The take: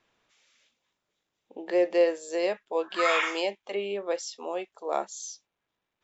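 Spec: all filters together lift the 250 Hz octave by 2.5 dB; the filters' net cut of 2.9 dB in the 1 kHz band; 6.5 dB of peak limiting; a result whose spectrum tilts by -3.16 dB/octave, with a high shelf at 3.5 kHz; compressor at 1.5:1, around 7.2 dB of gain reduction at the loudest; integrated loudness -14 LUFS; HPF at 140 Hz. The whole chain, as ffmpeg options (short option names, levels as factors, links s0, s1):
-af "highpass=140,equalizer=f=250:t=o:g=5.5,equalizer=f=1000:t=o:g=-3.5,highshelf=f=3500:g=-8,acompressor=threshold=0.0126:ratio=1.5,volume=14.1,alimiter=limit=0.708:level=0:latency=1"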